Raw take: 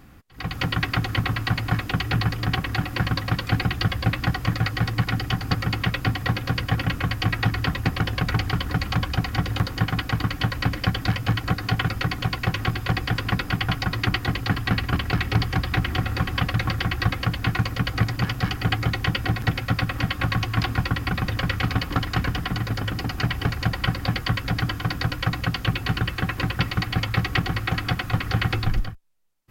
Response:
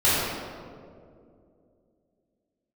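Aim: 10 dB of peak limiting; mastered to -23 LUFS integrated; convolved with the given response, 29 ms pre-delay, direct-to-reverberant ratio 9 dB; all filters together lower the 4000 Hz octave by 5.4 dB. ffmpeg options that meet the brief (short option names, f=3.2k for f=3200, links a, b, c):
-filter_complex "[0:a]equalizer=f=4k:t=o:g=-7.5,alimiter=limit=-18dB:level=0:latency=1,asplit=2[a][b];[1:a]atrim=start_sample=2205,adelay=29[c];[b][c]afir=irnorm=-1:irlink=0,volume=-27.5dB[d];[a][d]amix=inputs=2:normalize=0,volume=5dB"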